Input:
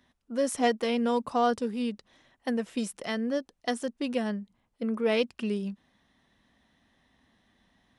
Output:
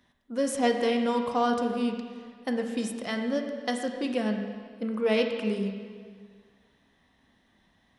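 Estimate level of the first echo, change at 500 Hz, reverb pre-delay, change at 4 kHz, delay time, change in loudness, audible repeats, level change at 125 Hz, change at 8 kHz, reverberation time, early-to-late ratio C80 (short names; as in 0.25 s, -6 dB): none, +1.5 dB, 16 ms, +1.0 dB, none, +1.0 dB, none, n/a, 0.0 dB, 1.8 s, 6.5 dB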